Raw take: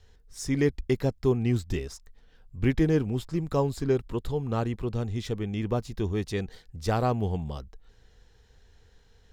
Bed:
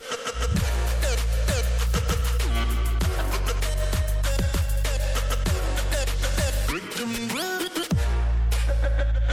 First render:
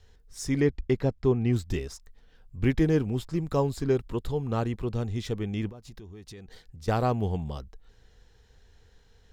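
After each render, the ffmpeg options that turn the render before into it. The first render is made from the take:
ffmpeg -i in.wav -filter_complex "[0:a]asettb=1/sr,asplit=3[link_01][link_02][link_03];[link_01]atrim=end=0.604[link_04];[link_02]atrim=start=0.6:end=1.53,asetpts=PTS-STARTPTS,afade=type=in:duration=0.004:curve=qsin,afade=type=out:start_time=0.926:duration=0.004:curve=qsin,aemphasis=mode=reproduction:type=50fm[link_05];[link_03]atrim=start=1.526[link_06];[link_04][link_05]acrossfade=duration=0.004:curve1=hsin:curve2=qsin[link_07];[link_07][link_06]acrossfade=duration=0.004:curve1=qsin:curve2=hsin,asettb=1/sr,asplit=3[link_08][link_09][link_10];[link_08]atrim=end=5.694[link_11];[link_09]atrim=start=5.69:end=6.88,asetpts=PTS-STARTPTS,afade=type=in:duration=0.004:curve=qsin,afade=type=out:start_time=1.186:duration=0.004:curve=qsin,acompressor=threshold=-41dB:ratio=10:attack=3.2:release=140:knee=1:detection=peak[link_12];[link_10]atrim=start=6.876[link_13];[link_11][link_12]acrossfade=duration=0.004:curve1=hsin:curve2=qsin[link_14];[link_14][link_13]acrossfade=duration=0.004:curve1=qsin:curve2=hsin" out.wav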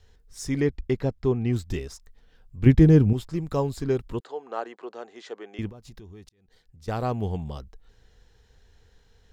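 ffmpeg -i in.wav -filter_complex "[0:a]asettb=1/sr,asplit=3[link_01][link_02][link_03];[link_01]atrim=end=2.664[link_04];[link_02]atrim=start=2.66:end=3.13,asetpts=PTS-STARTPTS,afade=type=in:duration=0.004:curve=qsin,afade=type=out:start_time=0.466:duration=0.004:curve=qsin,equalizer=frequency=93:width=0.32:gain=12.5[link_05];[link_03]atrim=start=3.126[link_06];[link_04][link_05]acrossfade=duration=0.004:curve1=hsin:curve2=qsin[link_07];[link_07][link_06]acrossfade=duration=0.004:curve1=qsin:curve2=hsin,asettb=1/sr,asplit=3[link_08][link_09][link_10];[link_08]atrim=end=4.204[link_11];[link_09]atrim=start=4.2:end=5.59,asetpts=PTS-STARTPTS,afade=type=in:duration=0.004:curve=qsin,afade=type=out:start_time=1.386:duration=0.004:curve=qsin,highpass=frequency=400:width=0.5412,highpass=frequency=400:width=1.3066,equalizer=frequency=480:width_type=q:width=4:gain=-3,equalizer=frequency=720:width_type=q:width=4:gain=3,equalizer=frequency=1600:width_type=q:width=4:gain=3,equalizer=frequency=2400:width_type=q:width=4:gain=-6,equalizer=frequency=3600:width_type=q:width=4:gain=-7,equalizer=frequency=5400:width_type=q:width=4:gain=-8,lowpass=frequency=6400:width=0.5412,lowpass=frequency=6400:width=1.3066[link_12];[link_10]atrim=start=5.586[link_13];[link_11][link_12]acrossfade=duration=0.004:curve1=hsin:curve2=qsin[link_14];[link_14][link_13]acrossfade=duration=0.004:curve1=qsin:curve2=hsin,asplit=2[link_15][link_16];[link_15]atrim=end=6.29,asetpts=PTS-STARTPTS,afade=type=out:start_time=6.286:duration=0.004:curve=hsin[link_17];[link_16]atrim=start=6.29,asetpts=PTS-STARTPTS,afade=type=in:duration=0.95[link_18];[link_17][link_18]concat=n=2:v=0:a=1" out.wav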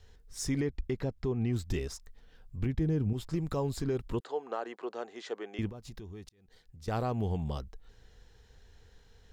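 ffmpeg -i in.wav -af "acompressor=threshold=-24dB:ratio=4,alimiter=limit=-22dB:level=0:latency=1:release=105" out.wav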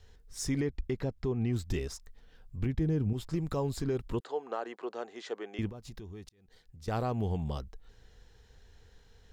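ffmpeg -i in.wav -af anull out.wav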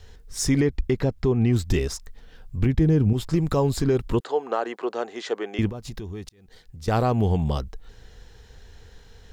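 ffmpeg -i in.wav -af "volume=10.5dB" out.wav

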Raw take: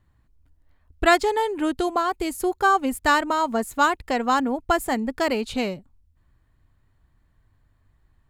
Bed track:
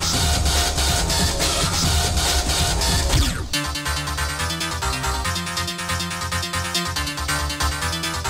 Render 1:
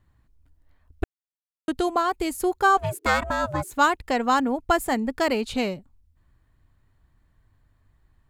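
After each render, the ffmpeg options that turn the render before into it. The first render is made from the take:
ffmpeg -i in.wav -filter_complex "[0:a]asettb=1/sr,asplit=3[link_01][link_02][link_03];[link_01]atrim=end=2.774[link_04];[link_02]atrim=start=2.77:end=3.72,asetpts=PTS-STARTPTS,afade=type=in:duration=0.004:curve=qsin,afade=type=out:start_time=0.946:duration=0.004:curve=qsin,aeval=exprs='val(0)*sin(2*PI*370*n/s)':channel_layout=same[link_05];[link_03]atrim=start=3.716[link_06];[link_04][link_05]acrossfade=duration=0.004:curve1=hsin:curve2=qsin[link_07];[link_07][link_06]acrossfade=duration=0.004:curve1=qsin:curve2=hsin,asplit=3[link_08][link_09][link_10];[link_08]atrim=end=1.04,asetpts=PTS-STARTPTS,afade=type=out:start_time=1.036:duration=0.004:curve=hsin[link_11];[link_09]atrim=start=1.04:end=1.68,asetpts=PTS-STARTPTS,volume=0[link_12];[link_10]atrim=start=1.68,asetpts=PTS-STARTPTS,afade=type=in:duration=0.004:curve=hsin[link_13];[link_11][link_12][link_13]concat=n=3:v=0:a=1" out.wav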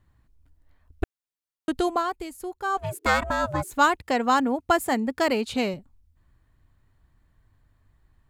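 ffmpeg -i in.wav -filter_complex "[0:a]asettb=1/sr,asplit=3[link_01][link_02][link_03];[link_01]atrim=end=4.004[link_04];[link_02]atrim=start=4:end=5.74,asetpts=PTS-STARTPTS,afade=type=in:duration=0.004:curve=qsin,afade=type=out:start_time=1.736:duration=0.004:curve=qsin,highpass=81[link_05];[link_03]atrim=start=5.736[link_06];[link_04][link_05]acrossfade=duration=0.004:curve1=hsin:curve2=qsin[link_07];[link_07][link_06]acrossfade=duration=0.004:curve1=qsin:curve2=hsin,asplit=3[link_08][link_09][link_10];[link_08]atrim=end=2.28,asetpts=PTS-STARTPTS,afade=type=out:start_time=1.86:duration=0.42:silence=0.298538[link_11];[link_09]atrim=start=2.28:end=2.65,asetpts=PTS-STARTPTS,volume=-10.5dB[link_12];[link_10]atrim=start=2.65,asetpts=PTS-STARTPTS,afade=type=in:duration=0.42:silence=0.298538[link_13];[link_11][link_12][link_13]concat=n=3:v=0:a=1" out.wav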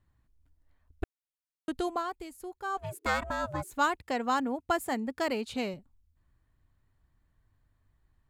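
ffmpeg -i in.wav -af "volume=-7.5dB" out.wav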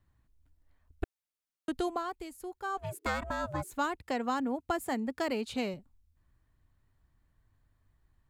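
ffmpeg -i in.wav -filter_complex "[0:a]acrossover=split=420[link_01][link_02];[link_02]acompressor=threshold=-33dB:ratio=2[link_03];[link_01][link_03]amix=inputs=2:normalize=0" out.wav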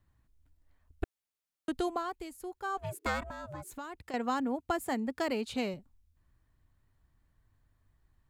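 ffmpeg -i in.wav -filter_complex "[0:a]asettb=1/sr,asplit=3[link_01][link_02][link_03];[link_01]atrim=end=3.224[link_04];[link_02]atrim=start=3.22:end=4.14,asetpts=PTS-STARTPTS,afade=type=in:duration=0.004:curve=qsin,afade=type=out:start_time=0.916:duration=0.004:curve=qsin,acompressor=threshold=-40dB:ratio=4:attack=3.2:release=140:knee=1:detection=peak[link_05];[link_03]atrim=start=4.136[link_06];[link_04][link_05]acrossfade=duration=0.004:curve1=hsin:curve2=qsin[link_07];[link_07][link_06]acrossfade=duration=0.004:curve1=qsin:curve2=hsin" out.wav

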